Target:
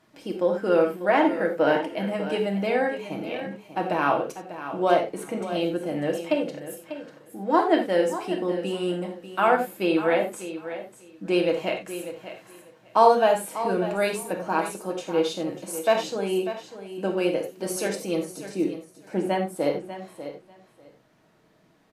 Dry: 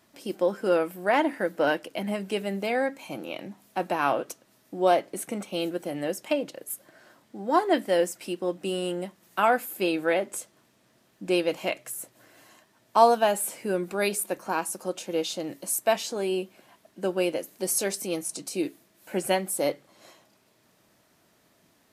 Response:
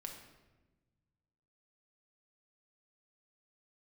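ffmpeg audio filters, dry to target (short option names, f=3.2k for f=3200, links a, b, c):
-filter_complex "[0:a]asetnsamples=n=441:p=0,asendcmd='18.25 lowpass f 1100;19.56 lowpass f 2100',lowpass=f=3.1k:p=1,aecho=1:1:594|1188:0.251|0.0402[a];[1:a]atrim=start_sample=2205,atrim=end_sample=3528,asetrate=35280,aresample=44100[b];[a][b]afir=irnorm=-1:irlink=0,volume=5.5dB"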